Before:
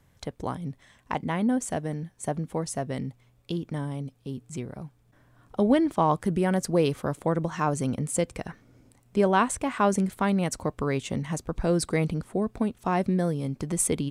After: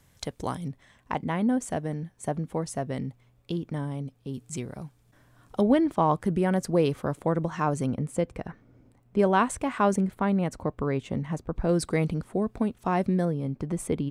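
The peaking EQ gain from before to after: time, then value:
peaking EQ 8.8 kHz 2.8 oct
+7.5 dB
from 0.68 s -4 dB
from 4.34 s +5.5 dB
from 5.61 s -5 dB
from 7.86 s -13.5 dB
from 9.19 s -4 dB
from 9.96 s -13.5 dB
from 11.69 s -3.5 dB
from 13.25 s -14 dB

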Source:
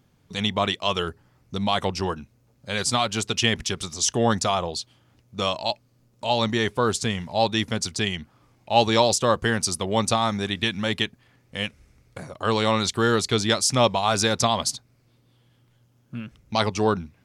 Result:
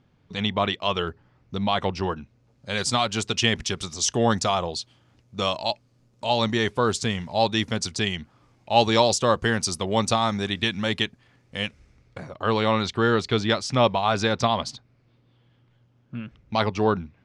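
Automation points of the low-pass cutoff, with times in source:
2.20 s 3.8 kHz
2.74 s 7.9 kHz
11.62 s 7.9 kHz
12.46 s 3.5 kHz

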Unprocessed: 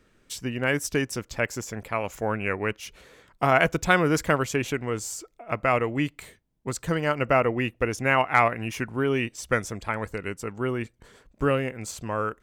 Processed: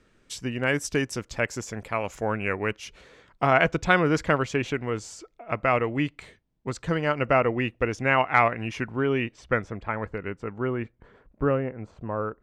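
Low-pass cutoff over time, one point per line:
2.56 s 8.8 kHz
3.53 s 4.8 kHz
8.74 s 4.8 kHz
9.72 s 2.1 kHz
10.80 s 2.1 kHz
11.89 s 1.1 kHz

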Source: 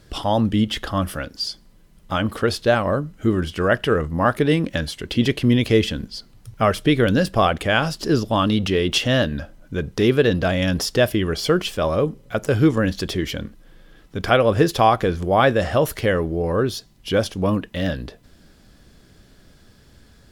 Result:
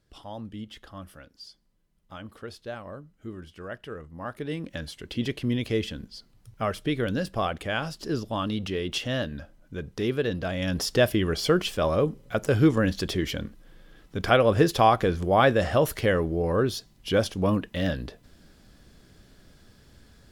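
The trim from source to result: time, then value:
4.09 s -19.5 dB
4.89 s -10 dB
10.49 s -10 dB
10.93 s -3.5 dB

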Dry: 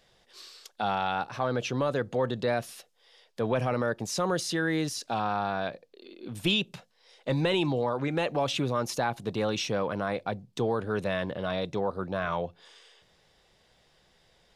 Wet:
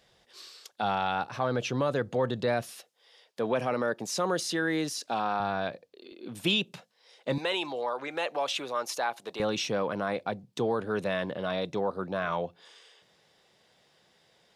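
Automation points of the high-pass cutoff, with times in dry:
47 Hz
from 2.69 s 200 Hz
from 5.40 s 54 Hz
from 6.12 s 160 Hz
from 7.38 s 550 Hz
from 9.40 s 140 Hz

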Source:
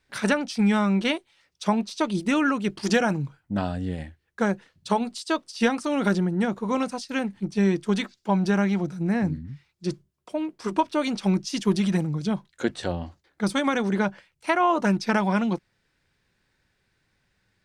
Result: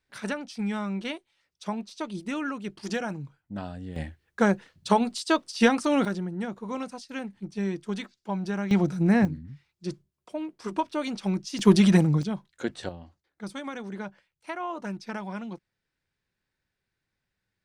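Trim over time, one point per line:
-9 dB
from 3.96 s +2 dB
from 6.05 s -8 dB
from 8.71 s +3.5 dB
from 9.25 s -5 dB
from 11.59 s +5 dB
from 12.23 s -5 dB
from 12.89 s -12.5 dB

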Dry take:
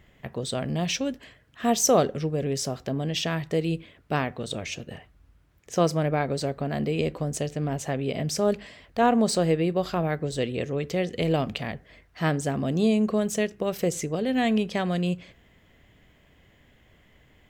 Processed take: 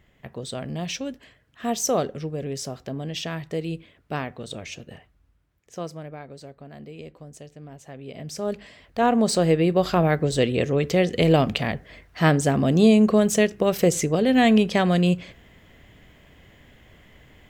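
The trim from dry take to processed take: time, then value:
4.93 s -3 dB
6.20 s -14 dB
7.81 s -14 dB
8.63 s -2 dB
9.97 s +6.5 dB

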